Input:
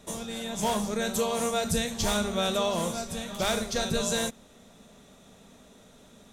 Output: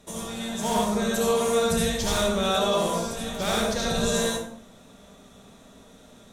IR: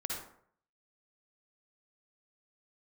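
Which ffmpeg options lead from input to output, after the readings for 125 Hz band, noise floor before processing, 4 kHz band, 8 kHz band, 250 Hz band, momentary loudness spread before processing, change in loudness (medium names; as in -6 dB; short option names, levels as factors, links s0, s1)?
+3.5 dB, -55 dBFS, +3.0 dB, +2.0 dB, +4.0 dB, 7 LU, +3.5 dB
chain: -filter_complex "[1:a]atrim=start_sample=2205,afade=t=out:st=0.33:d=0.01,atrim=end_sample=14994,asetrate=36162,aresample=44100[s0];[0:a][s0]afir=irnorm=-1:irlink=0"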